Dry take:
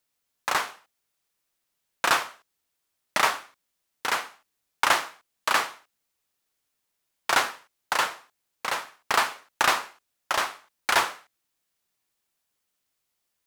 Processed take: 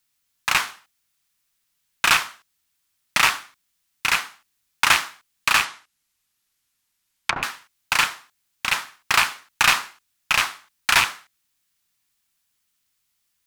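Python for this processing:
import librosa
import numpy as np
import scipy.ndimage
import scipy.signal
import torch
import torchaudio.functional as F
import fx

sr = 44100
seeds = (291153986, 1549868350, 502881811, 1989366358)

y = fx.rattle_buzz(x, sr, strikes_db=-45.0, level_db=-11.0)
y = fx.peak_eq(y, sr, hz=520.0, db=-13.0, octaves=1.6)
y = fx.env_lowpass_down(y, sr, base_hz=660.0, full_db=-23.0, at=(5.64, 7.43))
y = F.gain(torch.from_numpy(y), 6.5).numpy()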